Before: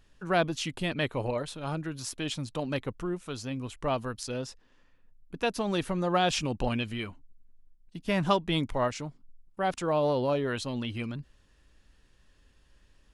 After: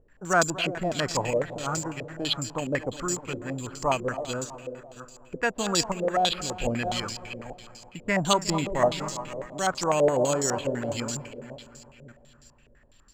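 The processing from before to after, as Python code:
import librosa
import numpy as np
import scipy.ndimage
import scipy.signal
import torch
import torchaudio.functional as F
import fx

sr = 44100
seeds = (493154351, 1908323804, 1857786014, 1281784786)

p1 = fx.reverse_delay(x, sr, ms=505, wet_db=-13.5)
p2 = fx.graphic_eq_10(p1, sr, hz=(125, 250, 1000), db=(-6, -7, -11), at=(5.92, 6.65))
p3 = p2 + fx.echo_heads(p2, sr, ms=121, heads='second and third', feedback_pct=51, wet_db=-15, dry=0)
p4 = (np.kron(scipy.signal.resample_poly(p3, 1, 6), np.eye(6)[0]) * 6)[:len(p3)]
y = fx.filter_held_lowpass(p4, sr, hz=12.0, low_hz=500.0, high_hz=5000.0)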